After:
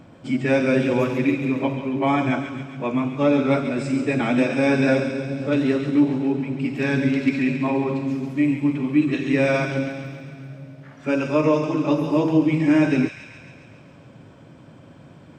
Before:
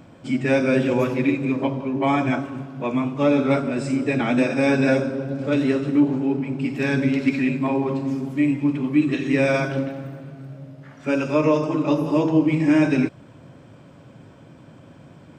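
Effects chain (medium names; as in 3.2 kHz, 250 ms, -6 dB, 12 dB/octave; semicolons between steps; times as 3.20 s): treble shelf 7.1 kHz -5 dB; feedback echo behind a high-pass 137 ms, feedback 65%, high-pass 2.2 kHz, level -6 dB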